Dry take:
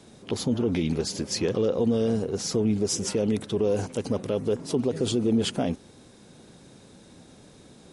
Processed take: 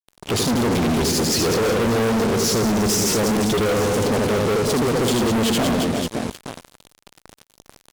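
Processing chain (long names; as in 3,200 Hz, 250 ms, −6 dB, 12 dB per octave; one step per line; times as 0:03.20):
reverse bouncing-ball delay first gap 80 ms, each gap 1.4×, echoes 5
fuzz pedal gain 39 dB, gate −41 dBFS
level −4.5 dB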